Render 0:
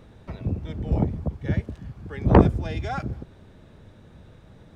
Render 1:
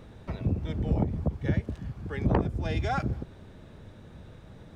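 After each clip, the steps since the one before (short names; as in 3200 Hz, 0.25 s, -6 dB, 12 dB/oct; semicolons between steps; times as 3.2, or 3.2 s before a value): compressor 10:1, threshold -22 dBFS, peak gain reduction 14.5 dB; gain +1 dB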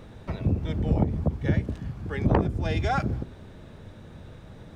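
de-hum 61.94 Hz, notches 7; gain +3.5 dB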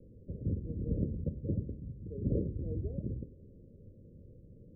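steep low-pass 560 Hz 96 dB/oct; de-hum 72.33 Hz, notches 31; gain -9 dB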